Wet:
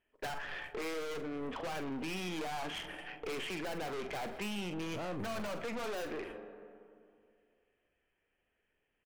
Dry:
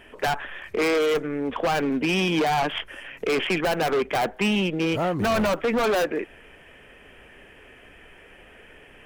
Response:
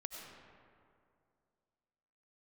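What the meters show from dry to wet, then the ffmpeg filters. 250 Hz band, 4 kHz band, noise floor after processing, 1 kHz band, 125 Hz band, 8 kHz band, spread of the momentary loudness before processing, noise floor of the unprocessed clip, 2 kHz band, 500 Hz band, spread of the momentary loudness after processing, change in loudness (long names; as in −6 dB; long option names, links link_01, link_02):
−15.5 dB, −14.0 dB, −82 dBFS, −16.0 dB, −15.0 dB, −11.0 dB, 9 LU, −50 dBFS, −14.5 dB, −16.5 dB, 5 LU, −15.5 dB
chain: -filter_complex "[0:a]agate=range=-30dB:threshold=-38dB:ratio=16:detection=peak,asplit=2[link_01][link_02];[1:a]atrim=start_sample=2205[link_03];[link_02][link_03]afir=irnorm=-1:irlink=0,volume=-14.5dB[link_04];[link_01][link_04]amix=inputs=2:normalize=0,aeval=exprs='(tanh(28.2*val(0)+0.35)-tanh(0.35))/28.2':channel_layout=same,asplit=2[link_05][link_06];[link_06]adelay=44,volume=-11dB[link_07];[link_05][link_07]amix=inputs=2:normalize=0,alimiter=level_in=7dB:limit=-24dB:level=0:latency=1:release=53,volume=-7dB,volume=-2.5dB"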